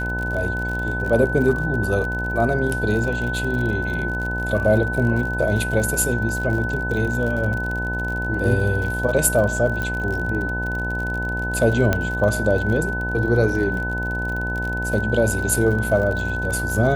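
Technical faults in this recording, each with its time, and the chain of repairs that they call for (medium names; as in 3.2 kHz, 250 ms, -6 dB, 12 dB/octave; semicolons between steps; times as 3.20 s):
buzz 60 Hz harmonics 17 -27 dBFS
crackle 54 per s -27 dBFS
whine 1.5 kHz -25 dBFS
9.82 s: pop -13 dBFS
11.93 s: pop -6 dBFS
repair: de-click; de-hum 60 Hz, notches 17; band-stop 1.5 kHz, Q 30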